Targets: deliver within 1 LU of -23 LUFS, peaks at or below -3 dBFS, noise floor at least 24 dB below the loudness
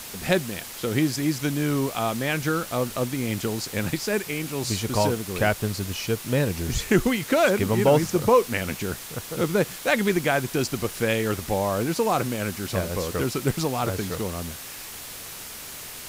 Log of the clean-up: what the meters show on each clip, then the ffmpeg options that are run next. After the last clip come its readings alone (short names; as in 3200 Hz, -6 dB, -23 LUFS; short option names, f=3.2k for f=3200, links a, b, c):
noise floor -39 dBFS; noise floor target -49 dBFS; loudness -25.0 LUFS; peak -6.5 dBFS; loudness target -23.0 LUFS
-> -af "afftdn=nr=10:nf=-39"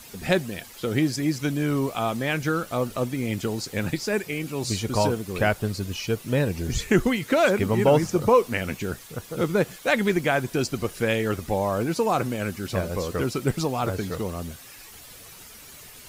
noise floor -46 dBFS; noise floor target -49 dBFS
-> -af "afftdn=nr=6:nf=-46"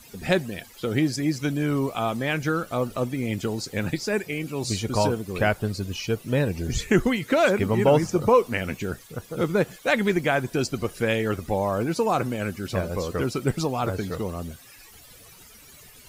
noise floor -49 dBFS; loudness -25.0 LUFS; peak -7.0 dBFS; loudness target -23.0 LUFS
-> -af "volume=2dB"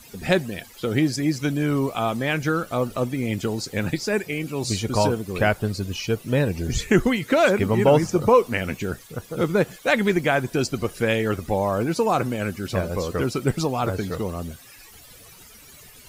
loudness -23.0 LUFS; peak -5.0 dBFS; noise floor -47 dBFS